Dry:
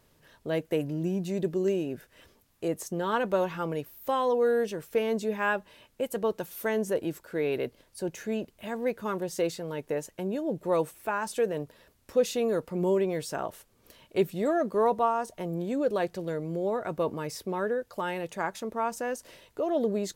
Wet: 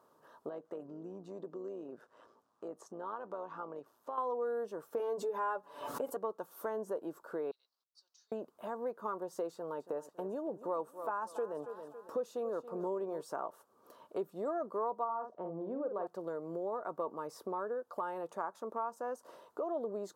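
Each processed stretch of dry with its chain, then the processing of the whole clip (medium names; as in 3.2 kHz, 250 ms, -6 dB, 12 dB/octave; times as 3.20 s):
0.49–4.18 s: AM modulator 110 Hz, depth 35% + low-pass 7 kHz + compression 2:1, threshold -45 dBFS
4.99–6.17 s: comb 7 ms, depth 87% + swell ahead of each attack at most 72 dB/s
7.51–8.32 s: expander -53 dBFS + Butterworth band-pass 4.7 kHz, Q 2.8 + companded quantiser 8-bit
9.52–13.21 s: band-stop 2.1 kHz, Q 11 + feedback delay 278 ms, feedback 35%, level -15.5 dB
15.04–16.07 s: tape spacing loss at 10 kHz 36 dB + doubling 49 ms -7 dB
whole clip: high-pass 320 Hz 12 dB/octave; resonant high shelf 1.6 kHz -10.5 dB, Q 3; compression 2.5:1, threshold -39 dBFS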